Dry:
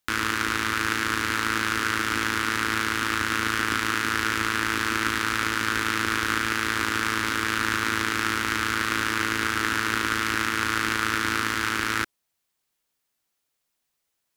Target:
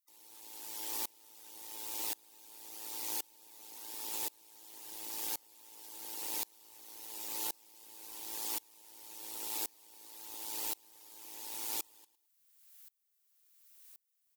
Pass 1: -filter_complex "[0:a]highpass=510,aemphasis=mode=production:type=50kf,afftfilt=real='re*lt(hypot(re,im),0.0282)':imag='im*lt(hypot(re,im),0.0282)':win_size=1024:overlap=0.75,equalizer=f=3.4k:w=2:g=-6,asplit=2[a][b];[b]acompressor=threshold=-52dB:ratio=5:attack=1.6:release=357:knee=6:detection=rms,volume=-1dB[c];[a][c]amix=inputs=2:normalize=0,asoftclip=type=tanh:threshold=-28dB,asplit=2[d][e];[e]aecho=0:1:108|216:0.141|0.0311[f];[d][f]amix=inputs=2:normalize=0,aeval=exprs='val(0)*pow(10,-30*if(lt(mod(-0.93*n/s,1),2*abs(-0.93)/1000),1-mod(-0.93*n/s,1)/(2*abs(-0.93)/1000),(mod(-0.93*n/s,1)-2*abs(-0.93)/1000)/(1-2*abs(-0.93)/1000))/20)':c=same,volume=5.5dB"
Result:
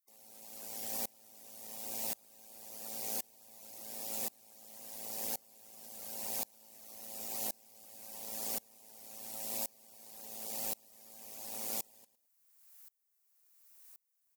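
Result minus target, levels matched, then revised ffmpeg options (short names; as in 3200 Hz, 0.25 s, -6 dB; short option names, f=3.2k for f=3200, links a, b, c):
500 Hz band +5.0 dB; 4000 Hz band -3.0 dB
-filter_complex "[0:a]highpass=1.1k,aemphasis=mode=production:type=50kf,afftfilt=real='re*lt(hypot(re,im),0.0282)':imag='im*lt(hypot(re,im),0.0282)':win_size=1024:overlap=0.75,asplit=2[a][b];[b]acompressor=threshold=-52dB:ratio=5:attack=1.6:release=357:knee=6:detection=rms,volume=-1dB[c];[a][c]amix=inputs=2:normalize=0,asoftclip=type=tanh:threshold=-28dB,asplit=2[d][e];[e]aecho=0:1:108|216:0.141|0.0311[f];[d][f]amix=inputs=2:normalize=0,aeval=exprs='val(0)*pow(10,-30*if(lt(mod(-0.93*n/s,1),2*abs(-0.93)/1000),1-mod(-0.93*n/s,1)/(2*abs(-0.93)/1000),(mod(-0.93*n/s,1)-2*abs(-0.93)/1000)/(1-2*abs(-0.93)/1000))/20)':c=same,volume=5.5dB"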